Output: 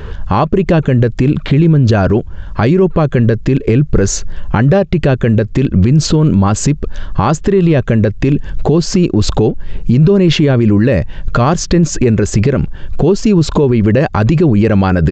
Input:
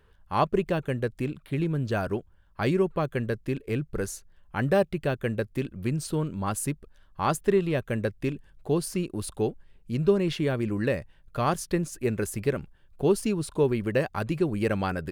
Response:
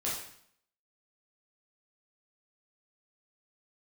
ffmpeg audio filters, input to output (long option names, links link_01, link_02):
-af "aresample=16000,aresample=44100,acompressor=threshold=-37dB:ratio=5,lowshelf=frequency=460:gain=7.5,alimiter=level_in=31dB:limit=-1dB:release=50:level=0:latency=1,volume=-1dB"